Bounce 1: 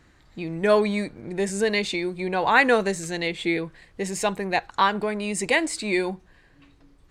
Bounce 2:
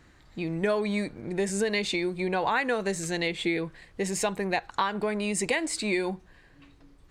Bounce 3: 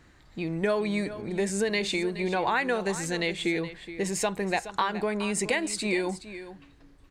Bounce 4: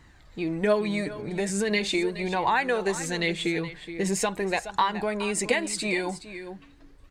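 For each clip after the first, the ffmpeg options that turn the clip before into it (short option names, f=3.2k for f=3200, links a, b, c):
-af "acompressor=threshold=-23dB:ratio=6"
-af "aecho=1:1:421:0.211"
-af "flanger=delay=1:depth=5.9:regen=44:speed=0.41:shape=sinusoidal,volume=5.5dB"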